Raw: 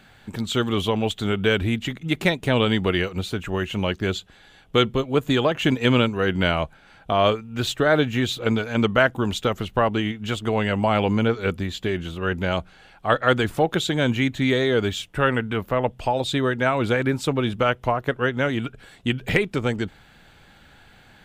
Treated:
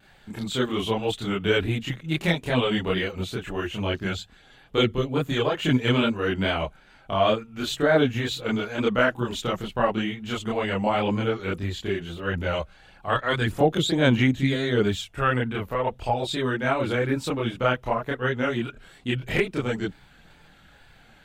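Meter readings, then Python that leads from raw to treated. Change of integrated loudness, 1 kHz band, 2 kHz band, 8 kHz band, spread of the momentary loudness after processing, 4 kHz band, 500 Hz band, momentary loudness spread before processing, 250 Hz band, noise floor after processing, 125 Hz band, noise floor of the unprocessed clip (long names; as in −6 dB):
−2.5 dB, −2.5 dB, −3.0 dB, −2.5 dB, 9 LU, −2.5 dB, −2.5 dB, 7 LU, −2.5 dB, −54 dBFS, −2.5 dB, −52 dBFS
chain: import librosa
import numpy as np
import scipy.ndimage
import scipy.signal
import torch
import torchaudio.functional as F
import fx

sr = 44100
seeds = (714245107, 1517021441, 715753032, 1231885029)

y = fx.wow_flutter(x, sr, seeds[0], rate_hz=2.1, depth_cents=53.0)
y = fx.chorus_voices(y, sr, voices=4, hz=0.8, base_ms=28, depth_ms=4.1, mix_pct=60)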